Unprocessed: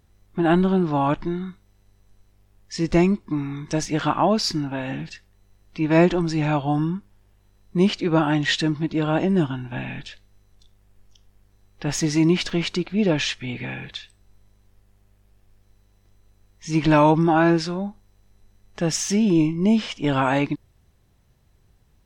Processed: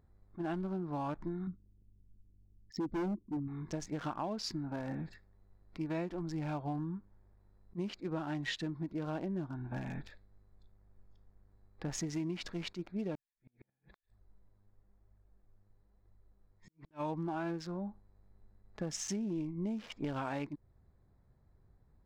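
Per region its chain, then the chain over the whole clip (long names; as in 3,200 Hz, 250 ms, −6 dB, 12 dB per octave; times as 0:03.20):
0:01.47–0:03.48: spectral envelope exaggerated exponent 2 + parametric band 300 Hz +9.5 dB 1.5 octaves + hard clipping −14.5 dBFS
0:13.15–0:16.91: downward compressor 4 to 1, threshold −35 dBFS + flanger 1 Hz, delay 0.8 ms, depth 9.2 ms, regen −9% + gate with flip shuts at −31 dBFS, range −41 dB
whole clip: adaptive Wiener filter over 15 samples; downward compressor 6 to 1, threshold −29 dBFS; level that may rise only so fast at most 410 dB per second; level −6 dB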